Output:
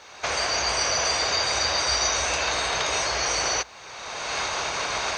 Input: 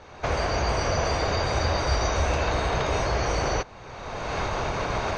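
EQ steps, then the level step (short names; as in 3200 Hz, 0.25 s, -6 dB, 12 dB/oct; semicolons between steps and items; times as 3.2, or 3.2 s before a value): tilt +4.5 dB/oct; bell 60 Hz +7.5 dB 0.35 oct; 0.0 dB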